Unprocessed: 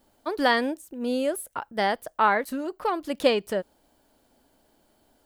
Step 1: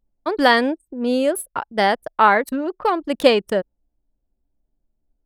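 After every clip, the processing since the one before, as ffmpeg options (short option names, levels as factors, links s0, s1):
-af "anlmdn=1,volume=2.24"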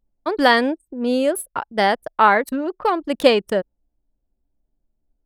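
-af anull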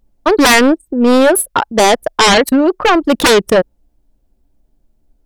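-af "aeval=exprs='0.841*sin(PI/2*5.01*val(0)/0.841)':c=same,volume=0.668"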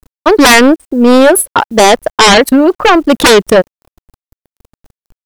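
-af "acrusher=bits=7:mix=0:aa=0.000001,volume=1.58"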